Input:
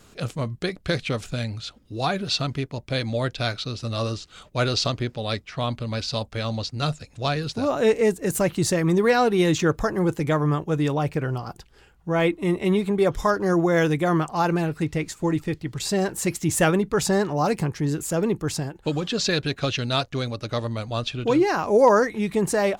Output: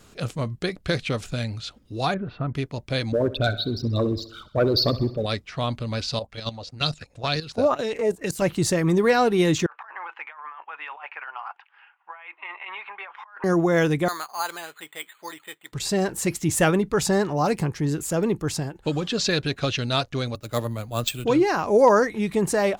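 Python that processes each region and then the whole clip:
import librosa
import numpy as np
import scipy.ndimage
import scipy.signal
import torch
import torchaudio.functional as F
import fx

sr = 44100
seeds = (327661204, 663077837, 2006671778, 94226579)

y = fx.chain(x, sr, fx.ladder_lowpass(hz=2000.0, resonance_pct=25),
    fx.low_shelf(hz=440.0, db=7.0), at=(2.14, 2.55))
y = fx.chain(y, sr, fx.envelope_sharpen(power=3.0),
    fx.leveller(passes=1),
    fx.echo_feedback(ms=65, feedback_pct=55, wet_db=-16), at=(3.12, 5.26))
y = fx.chain(y, sr, fx.level_steps(step_db=13),
    fx.bell_lfo(hz=2.1, low_hz=510.0, high_hz=5000.0, db=14), at=(6.19, 8.42))
y = fx.chain(y, sr, fx.cheby1_bandpass(low_hz=870.0, high_hz=2700.0, order=3),
    fx.over_compress(threshold_db=-39.0, ratio=-1.0), at=(9.66, 13.44))
y = fx.chain(y, sr, fx.highpass(hz=1100.0, slope=12),
    fx.resample_bad(factor=8, down='filtered', up='hold'), at=(14.08, 15.73))
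y = fx.chain(y, sr, fx.sample_hold(seeds[0], rate_hz=11000.0, jitter_pct=0),
    fx.band_widen(depth_pct=100), at=(20.35, 21.25))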